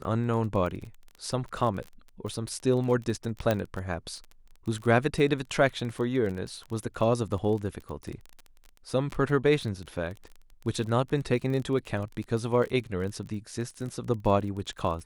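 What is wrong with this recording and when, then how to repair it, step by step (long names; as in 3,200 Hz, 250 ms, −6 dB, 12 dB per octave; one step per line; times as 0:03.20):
surface crackle 27 per second −34 dBFS
0:03.51: click −13 dBFS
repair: click removal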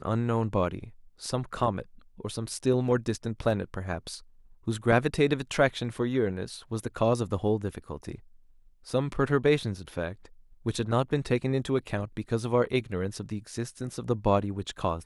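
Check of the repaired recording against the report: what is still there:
0:03.51: click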